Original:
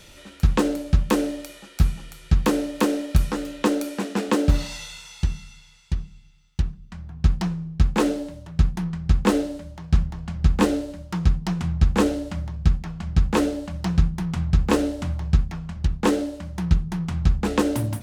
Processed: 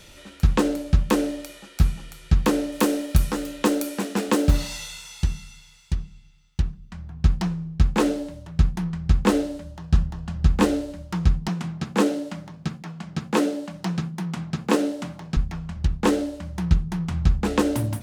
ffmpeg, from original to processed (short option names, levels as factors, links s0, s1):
-filter_complex "[0:a]asettb=1/sr,asplit=3[s0][s1][s2];[s0]atrim=end=2.724[s3];[s1]atrim=start=2.72:end=5.96,asetpts=PTS-STARTPTS,afade=t=in:d=0.004:c=qsin,afade=t=out:st=3.236:d=0.004:c=qsin,highshelf=f=9000:g=9.5[s4];[s2]atrim=start=5.956[s5];[s3][s4]acrossfade=d=0.004:c1=hsin:c2=qsin[s6];[s6][s5]acrossfade=d=0.004:c1=qsin:c2=hsin,asettb=1/sr,asplit=3[s7][s8][s9];[s7]atrim=end=9.634[s10];[s8]atrim=start=9.63:end=10.47,asetpts=PTS-STARTPTS,afade=t=in:d=0.004:c=qsin,afade=t=out:st=0.836:d=0.004:c=qsin,bandreject=f=2200:w=8.7[s11];[s9]atrim=start=10.466[s12];[s10][s11]acrossfade=d=0.004:c1=hsin:c2=qsin[s13];[s13][s12]acrossfade=d=0.004:c1=qsin:c2=hsin,asettb=1/sr,asplit=3[s14][s15][s16];[s14]atrim=end=11.484[s17];[s15]atrim=start=11.48:end=15.37,asetpts=PTS-STARTPTS,afade=t=in:d=0.004:c=qsin,afade=t=out:st=3.886:d=0.004:c=qsin,highpass=f=160:w=0.5412,highpass=f=160:w=1.3066[s18];[s16]atrim=start=15.366[s19];[s17][s18]acrossfade=d=0.004:c1=hsin:c2=qsin[s20];[s20][s19]acrossfade=d=0.004:c1=qsin:c2=hsin"